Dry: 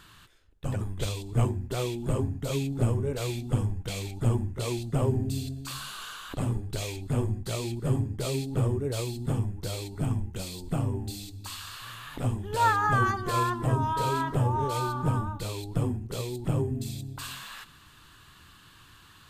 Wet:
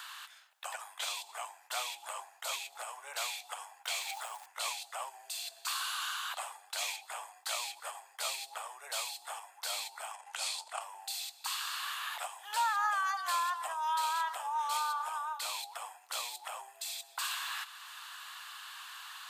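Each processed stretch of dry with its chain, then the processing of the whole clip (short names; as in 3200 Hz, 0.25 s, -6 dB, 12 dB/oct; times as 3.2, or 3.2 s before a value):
3.86–4.46 short-mantissa float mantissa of 4-bit + backwards sustainer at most 68 dB/s
10.13–10.81 LPF 11000 Hz 24 dB/oct + transient shaper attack -7 dB, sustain +9 dB
whole clip: compressor, threshold -27 dBFS; steep high-pass 720 Hz 48 dB/oct; three-band squash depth 40%; gain +3.5 dB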